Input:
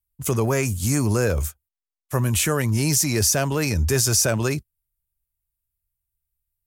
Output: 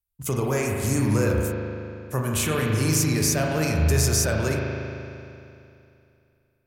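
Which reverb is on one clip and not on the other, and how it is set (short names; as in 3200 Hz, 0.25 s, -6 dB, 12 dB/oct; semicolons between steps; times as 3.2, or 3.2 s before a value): spring tank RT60 2.7 s, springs 38 ms, chirp 30 ms, DRR -1 dB; gain -4.5 dB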